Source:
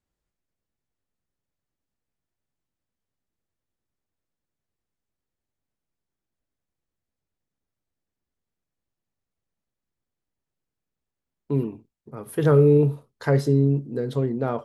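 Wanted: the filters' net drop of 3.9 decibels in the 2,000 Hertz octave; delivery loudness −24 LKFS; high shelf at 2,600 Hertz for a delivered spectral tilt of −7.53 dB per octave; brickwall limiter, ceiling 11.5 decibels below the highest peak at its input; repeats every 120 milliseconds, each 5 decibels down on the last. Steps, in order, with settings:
parametric band 2,000 Hz −4 dB
high-shelf EQ 2,600 Hz −4 dB
brickwall limiter −18.5 dBFS
repeating echo 120 ms, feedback 56%, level −5 dB
level +4 dB

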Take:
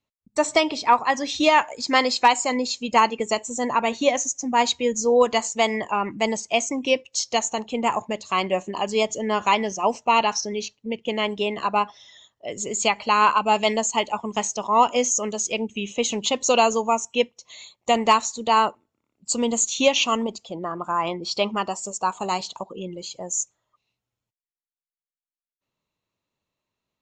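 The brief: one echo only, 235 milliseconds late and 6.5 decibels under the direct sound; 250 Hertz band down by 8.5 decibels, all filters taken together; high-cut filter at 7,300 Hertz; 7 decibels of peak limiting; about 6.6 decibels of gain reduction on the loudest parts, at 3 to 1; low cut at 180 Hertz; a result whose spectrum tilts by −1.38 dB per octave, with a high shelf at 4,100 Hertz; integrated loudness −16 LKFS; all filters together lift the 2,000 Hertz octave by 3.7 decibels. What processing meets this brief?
high-pass filter 180 Hz
low-pass filter 7,300 Hz
parametric band 250 Hz −8.5 dB
parametric band 2,000 Hz +7 dB
high-shelf EQ 4,100 Hz −8.5 dB
downward compressor 3 to 1, threshold −20 dBFS
brickwall limiter −15 dBFS
single-tap delay 235 ms −6.5 dB
level +11.5 dB

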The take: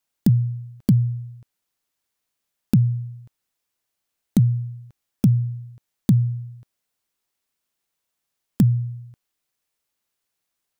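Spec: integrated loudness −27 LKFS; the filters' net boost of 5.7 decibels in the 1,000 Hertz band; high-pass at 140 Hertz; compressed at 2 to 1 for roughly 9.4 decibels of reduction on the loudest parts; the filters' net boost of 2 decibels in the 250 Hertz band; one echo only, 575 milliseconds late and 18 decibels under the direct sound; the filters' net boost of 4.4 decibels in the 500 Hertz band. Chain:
high-pass filter 140 Hz
parametric band 250 Hz +3.5 dB
parametric band 500 Hz +3.5 dB
parametric band 1,000 Hz +6 dB
downward compressor 2 to 1, threshold −28 dBFS
single-tap delay 575 ms −18 dB
level +4.5 dB

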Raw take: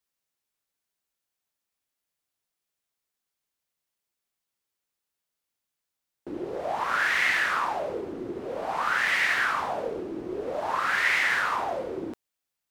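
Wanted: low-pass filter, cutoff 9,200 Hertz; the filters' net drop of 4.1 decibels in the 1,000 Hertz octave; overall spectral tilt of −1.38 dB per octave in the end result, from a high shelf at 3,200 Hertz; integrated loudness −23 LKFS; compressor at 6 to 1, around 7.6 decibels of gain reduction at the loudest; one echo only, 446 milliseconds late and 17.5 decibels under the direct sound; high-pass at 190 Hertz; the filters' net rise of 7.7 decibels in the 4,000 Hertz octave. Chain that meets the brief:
high-pass filter 190 Hz
low-pass filter 9,200 Hz
parametric band 1,000 Hz −7 dB
high-shelf EQ 3,200 Hz +8 dB
parametric band 4,000 Hz +5 dB
downward compressor 6 to 1, threshold −26 dBFS
single-tap delay 446 ms −17.5 dB
level +7 dB

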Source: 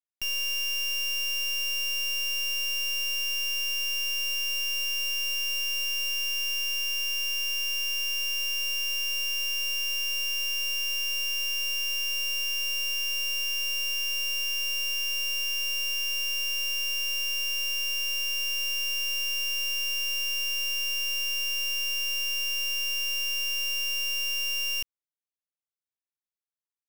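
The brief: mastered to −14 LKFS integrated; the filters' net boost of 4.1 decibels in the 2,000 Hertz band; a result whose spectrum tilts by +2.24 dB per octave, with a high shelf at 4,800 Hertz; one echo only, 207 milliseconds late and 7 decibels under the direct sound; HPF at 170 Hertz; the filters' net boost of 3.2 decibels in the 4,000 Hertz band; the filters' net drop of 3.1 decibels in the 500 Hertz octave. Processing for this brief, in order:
high-pass filter 170 Hz
parametric band 500 Hz −3.5 dB
parametric band 2,000 Hz +5.5 dB
parametric band 4,000 Hz +5.5 dB
high-shelf EQ 4,800 Hz −5.5 dB
single-tap delay 207 ms −7 dB
level +12.5 dB

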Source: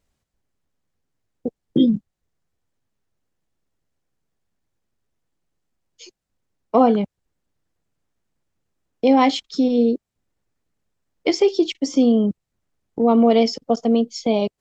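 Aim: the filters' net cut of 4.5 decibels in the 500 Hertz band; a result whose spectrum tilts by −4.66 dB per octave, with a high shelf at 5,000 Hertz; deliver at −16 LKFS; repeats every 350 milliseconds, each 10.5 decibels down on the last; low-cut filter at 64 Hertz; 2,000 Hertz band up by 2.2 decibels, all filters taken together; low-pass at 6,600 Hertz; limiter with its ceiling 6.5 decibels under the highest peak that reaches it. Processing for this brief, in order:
high-pass filter 64 Hz
low-pass filter 6,600 Hz
parametric band 500 Hz −5.5 dB
parametric band 2,000 Hz +3.5 dB
high-shelf EQ 5,000 Hz −4.5 dB
brickwall limiter −11 dBFS
repeating echo 350 ms, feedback 30%, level −10.5 dB
level +6.5 dB

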